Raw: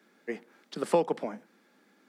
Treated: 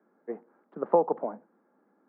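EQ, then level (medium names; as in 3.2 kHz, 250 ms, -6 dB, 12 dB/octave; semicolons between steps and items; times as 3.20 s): dynamic bell 730 Hz, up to +5 dB, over -38 dBFS, Q 0.84; low-pass 1.2 kHz 24 dB/octave; bass shelf 210 Hz -7.5 dB; 0.0 dB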